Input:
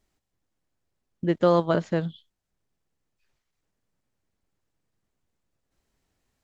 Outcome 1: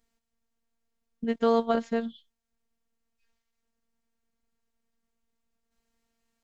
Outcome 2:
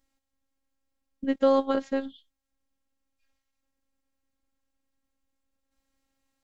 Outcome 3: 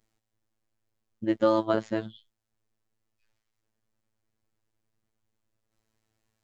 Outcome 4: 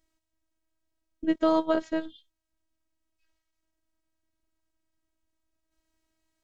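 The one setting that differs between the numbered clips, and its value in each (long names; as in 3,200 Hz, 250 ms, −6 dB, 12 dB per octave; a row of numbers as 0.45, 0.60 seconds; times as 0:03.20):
phases set to zero, frequency: 230, 270, 110, 320 Hertz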